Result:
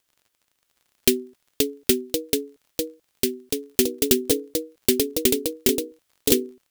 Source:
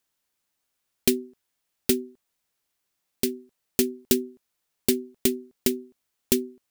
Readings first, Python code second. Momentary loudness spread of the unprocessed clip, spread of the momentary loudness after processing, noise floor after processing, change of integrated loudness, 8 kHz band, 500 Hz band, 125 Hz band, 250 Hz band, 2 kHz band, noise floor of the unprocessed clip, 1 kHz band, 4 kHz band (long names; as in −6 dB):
7 LU, 10 LU, −74 dBFS, +3.5 dB, +5.5 dB, +5.5 dB, +3.5 dB, +2.5 dB, +5.0 dB, −79 dBFS, +4.5 dB, +6.5 dB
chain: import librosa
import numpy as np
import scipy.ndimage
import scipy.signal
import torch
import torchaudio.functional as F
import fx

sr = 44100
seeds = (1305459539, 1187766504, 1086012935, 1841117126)

y = fx.graphic_eq_31(x, sr, hz=(200, 800, 3150), db=(-12, -5, 3))
y = fx.echo_pitch(y, sr, ms=644, semitones=2, count=2, db_per_echo=-3.0)
y = fx.dmg_crackle(y, sr, seeds[0], per_s=36.0, level_db=-49.0)
y = y * 10.0 ** (3.5 / 20.0)